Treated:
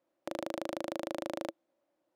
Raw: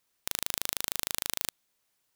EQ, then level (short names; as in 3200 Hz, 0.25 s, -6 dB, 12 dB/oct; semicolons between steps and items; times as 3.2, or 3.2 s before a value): double band-pass 430 Hz, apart 0.74 oct; +17.0 dB